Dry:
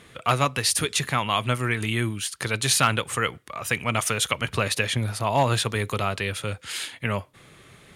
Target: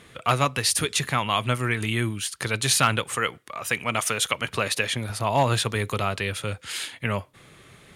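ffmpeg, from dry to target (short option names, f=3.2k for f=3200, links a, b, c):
-filter_complex "[0:a]asettb=1/sr,asplit=3[a][b][c];[a]atrim=end=3.044[d];[b]atrim=start=3.04:end=5.1,asetpts=PTS-STARTPTS,afade=t=in:d=0.004:c=qsin,afade=t=out:st=2.056:d=0.004:c=qsin,lowshelf=f=120:g=-11.5[e];[c]atrim=start=5.096[f];[d][e]acrossfade=d=0.004:c1=hsin:c2=qsin[g];[g][f]acrossfade=d=0.004:c1=qsin:c2=hsin"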